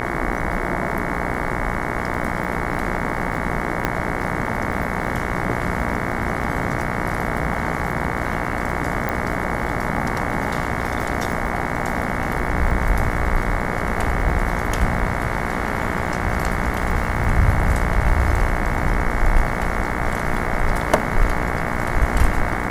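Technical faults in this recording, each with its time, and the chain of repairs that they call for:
buzz 60 Hz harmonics 37 -26 dBFS
crackle 23 per s -28 dBFS
3.85 s: pop -6 dBFS
9.09 s: pop -10 dBFS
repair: de-click; de-hum 60 Hz, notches 37

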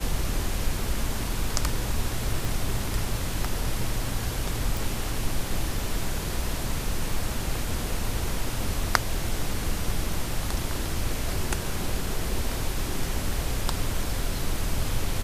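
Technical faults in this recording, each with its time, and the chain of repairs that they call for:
2.45 s: pop
4.77 s: pop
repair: de-click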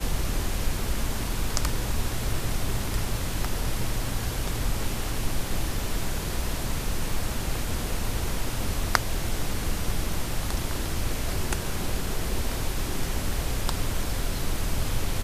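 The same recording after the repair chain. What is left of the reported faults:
2.45 s: pop

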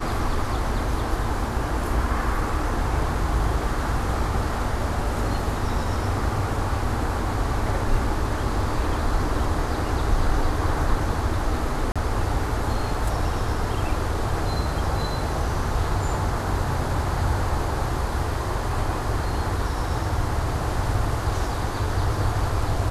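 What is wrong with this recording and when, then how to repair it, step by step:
11.92–11.96 s: dropout 36 ms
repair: interpolate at 11.92 s, 36 ms

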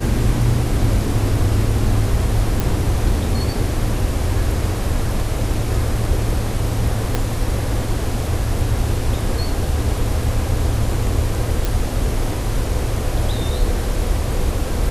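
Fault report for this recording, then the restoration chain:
2.60 s: pop
7.15 s: pop -5 dBFS
11.65 s: pop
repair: de-click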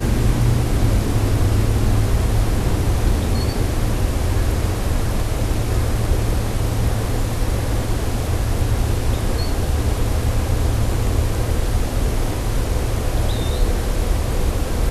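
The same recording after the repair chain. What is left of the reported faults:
7.15 s: pop

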